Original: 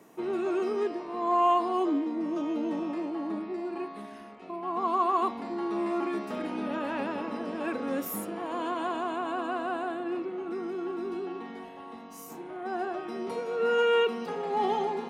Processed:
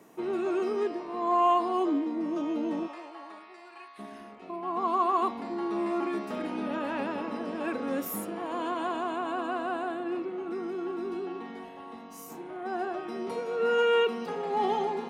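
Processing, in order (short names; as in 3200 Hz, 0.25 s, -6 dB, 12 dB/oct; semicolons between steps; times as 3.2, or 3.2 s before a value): 2.86–3.98 HPF 690 Hz -> 1500 Hz 12 dB/oct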